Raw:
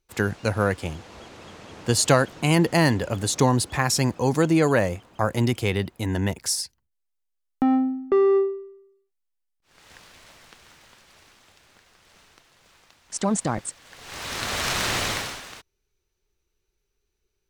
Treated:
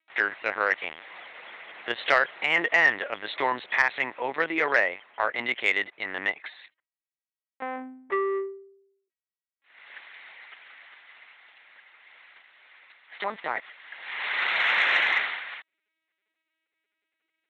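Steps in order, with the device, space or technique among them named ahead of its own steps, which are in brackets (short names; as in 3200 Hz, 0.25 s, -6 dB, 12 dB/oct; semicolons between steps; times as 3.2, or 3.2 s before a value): talking toy (LPC vocoder at 8 kHz pitch kept; HPF 670 Hz 12 dB/oct; bell 2000 Hz +12 dB 0.55 oct; soft clip -7.5 dBFS, distortion -22 dB)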